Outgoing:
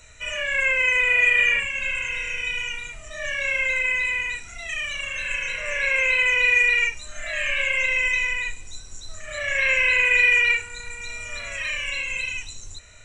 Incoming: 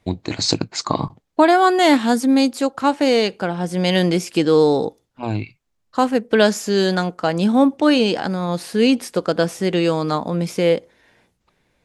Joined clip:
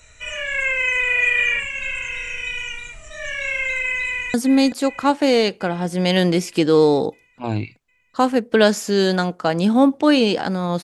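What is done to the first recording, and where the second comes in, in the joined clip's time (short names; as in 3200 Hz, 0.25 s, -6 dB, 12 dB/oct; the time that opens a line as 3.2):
outgoing
4.08–4.34 echo throw 0.38 s, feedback 70%, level -11 dB
4.34 switch to incoming from 2.13 s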